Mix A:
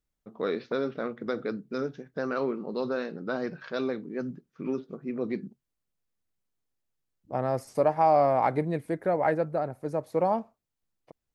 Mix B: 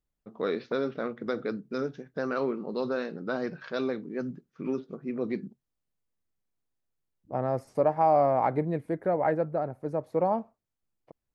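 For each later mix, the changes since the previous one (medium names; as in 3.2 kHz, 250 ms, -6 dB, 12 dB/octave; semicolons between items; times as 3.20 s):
second voice: add treble shelf 2.6 kHz -11.5 dB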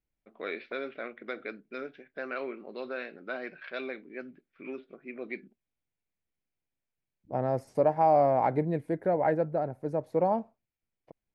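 first voice: add cabinet simulation 470–3500 Hz, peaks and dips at 470 Hz -7 dB, 900 Hz -10 dB, 2.3 kHz +9 dB; master: add peaking EQ 1.2 kHz -7.5 dB 0.26 oct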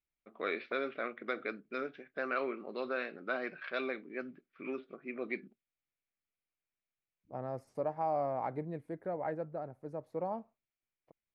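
second voice -11.0 dB; master: add peaking EQ 1.2 kHz +7.5 dB 0.26 oct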